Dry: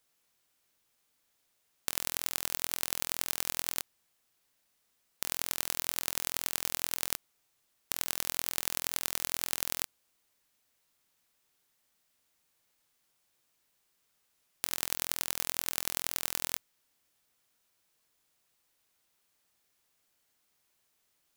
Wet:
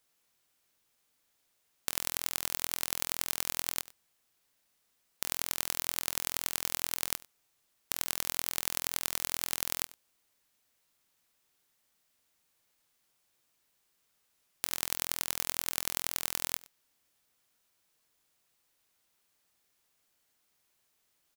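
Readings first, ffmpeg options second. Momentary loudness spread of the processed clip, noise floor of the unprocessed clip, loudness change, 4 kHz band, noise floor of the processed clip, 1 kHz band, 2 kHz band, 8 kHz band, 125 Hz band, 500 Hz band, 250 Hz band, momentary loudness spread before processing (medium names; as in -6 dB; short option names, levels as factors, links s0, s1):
5 LU, -76 dBFS, 0.0 dB, 0.0 dB, -76 dBFS, +0.5 dB, 0.0 dB, 0.0 dB, +0.5 dB, -0.5 dB, 0.0 dB, 5 LU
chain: -af "aecho=1:1:96:0.0891"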